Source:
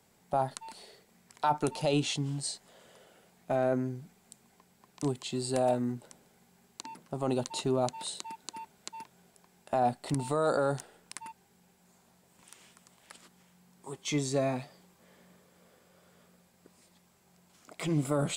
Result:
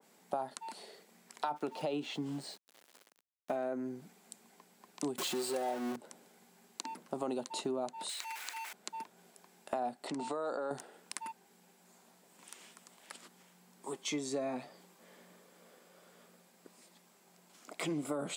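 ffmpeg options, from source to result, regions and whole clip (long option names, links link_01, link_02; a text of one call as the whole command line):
ffmpeg -i in.wav -filter_complex "[0:a]asettb=1/sr,asplit=3[link_01][link_02][link_03];[link_01]atrim=end=1.564[link_04];[link_02]atrim=start=1.56:end=3.56,asetpts=PTS-STARTPTS,afade=type=in:duration=0.004:curve=qsin,afade=type=out:start_time=1.996:duration=0.004:curve=qsin,acrossover=split=4000[link_05][link_06];[link_06]acompressor=threshold=-52dB:ratio=4:attack=1:release=60[link_07];[link_05][link_07]amix=inputs=2:normalize=0,aeval=exprs='val(0)*gte(abs(val(0)),0.00299)':channel_layout=same[link_08];[link_03]atrim=start=3.556[link_09];[link_04][link_08]acrossfade=duration=0.004:curve1=hsin:curve2=qsin[link_10];[link_10][link_09]acrossfade=duration=0.004:curve1=qsin:curve2=hsin,asettb=1/sr,asplit=3[link_11][link_12][link_13];[link_11]atrim=end=5.184[link_14];[link_12]atrim=start=5.18:end=5.96,asetpts=PTS-STARTPTS,afade=type=in:duration=0.004:curve=qsin,afade=type=out:start_time=0.776:duration=0.004:curve=qsin,aeval=exprs='val(0)+0.5*0.0376*sgn(val(0))':channel_layout=same,highpass=frequency=220:poles=1,aecho=1:1:5.5:0.51,atrim=end_sample=34398[link_15];[link_13]atrim=start=5.956[link_16];[link_14][link_15]acrossfade=duration=0.004:curve1=hsin:curve2=qsin[link_17];[link_17][link_16]acrossfade=duration=0.004:curve1=qsin:curve2=hsin,asettb=1/sr,asplit=3[link_18][link_19][link_20];[link_18]atrim=end=8.094[link_21];[link_19]atrim=start=8.09:end=8.73,asetpts=PTS-STARTPTS,afade=type=in:duration=0.004:curve=qsin,afade=type=out:start_time=0.636:duration=0.004:curve=qsin,aeval=exprs='val(0)+0.5*0.0133*sgn(val(0))':channel_layout=same,highpass=1300,equalizer=frequency=2200:width=2.1:gain=9[link_22];[link_20]atrim=start=8.726[link_23];[link_21][link_22]acrossfade=duration=0.004:curve1=hsin:curve2=qsin[link_24];[link_24][link_23]acrossfade=duration=0.004:curve1=qsin:curve2=hsin,asettb=1/sr,asplit=3[link_25][link_26][link_27];[link_25]atrim=end=10.074[link_28];[link_26]atrim=start=10.07:end=10.71,asetpts=PTS-STARTPTS,afade=type=in:duration=0.004:curve=qsin,afade=type=out:start_time=0.636:duration=0.004:curve=qsin,lowpass=frequency=7600:width=0.5412,lowpass=frequency=7600:width=1.3066,equalizer=frequency=89:width=0.87:gain=-12.5,acompressor=threshold=-34dB:ratio=2.5:attack=3.2:release=140:knee=1:detection=peak[link_29];[link_27]atrim=start=10.706[link_30];[link_28][link_29]acrossfade=duration=0.004:curve1=hsin:curve2=qsin[link_31];[link_31][link_30]acrossfade=duration=0.004:curve1=qsin:curve2=hsin,highpass=frequency=200:width=0.5412,highpass=frequency=200:width=1.3066,acompressor=threshold=-35dB:ratio=6,adynamicequalizer=threshold=0.00141:dfrequency=1900:dqfactor=0.7:tfrequency=1900:tqfactor=0.7:attack=5:release=100:ratio=0.375:range=2.5:mode=cutabove:tftype=highshelf,volume=2dB" out.wav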